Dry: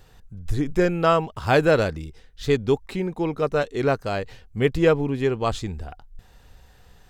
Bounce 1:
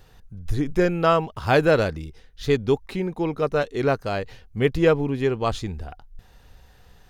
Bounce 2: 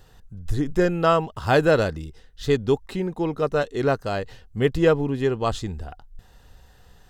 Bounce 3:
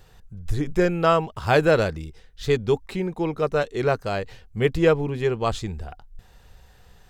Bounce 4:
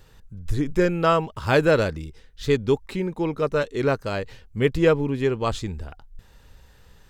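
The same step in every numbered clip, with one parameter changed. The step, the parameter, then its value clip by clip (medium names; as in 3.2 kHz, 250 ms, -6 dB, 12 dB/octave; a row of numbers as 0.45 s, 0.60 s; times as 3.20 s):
band-stop, frequency: 7.7 kHz, 2.3 kHz, 270 Hz, 730 Hz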